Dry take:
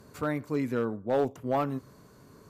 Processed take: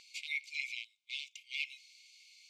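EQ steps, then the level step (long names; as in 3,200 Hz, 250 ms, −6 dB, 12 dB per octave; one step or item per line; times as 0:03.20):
linear-phase brick-wall high-pass 2,100 Hz
high-frequency loss of the air 140 metres
+14.5 dB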